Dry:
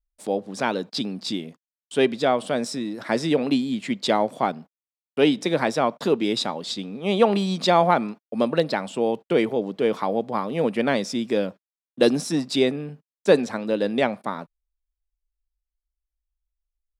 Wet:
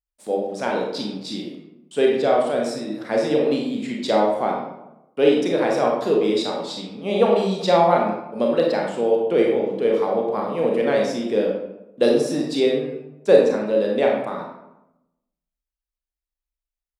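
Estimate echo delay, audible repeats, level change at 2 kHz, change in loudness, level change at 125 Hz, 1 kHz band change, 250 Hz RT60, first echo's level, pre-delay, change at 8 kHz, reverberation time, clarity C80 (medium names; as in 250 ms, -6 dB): no echo, no echo, -1.0 dB, +2.5 dB, -1.5 dB, +1.0 dB, 1.1 s, no echo, 27 ms, no reading, 0.95 s, 5.5 dB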